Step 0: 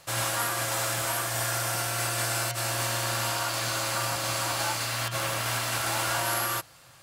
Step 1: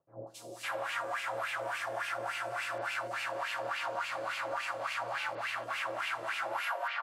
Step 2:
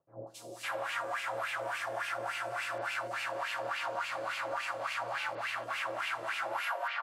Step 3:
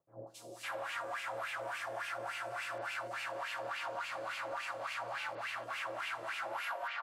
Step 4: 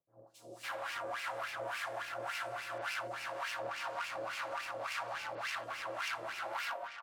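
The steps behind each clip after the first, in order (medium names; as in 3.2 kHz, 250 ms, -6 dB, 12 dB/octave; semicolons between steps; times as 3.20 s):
three bands offset in time lows, highs, mids 270/560 ms, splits 470/4600 Hz; wah-wah 3.5 Hz 480–2600 Hz, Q 3.5; compression 2:1, threshold -42 dBFS, peak gain reduction 5.5 dB; trim +7 dB
no audible change
saturation -25.5 dBFS, distortion -24 dB; trim -3.5 dB
self-modulated delay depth 0.074 ms; harmonic tremolo 1.9 Hz, depth 50%, crossover 840 Hz; level rider gain up to 10.5 dB; trim -7.5 dB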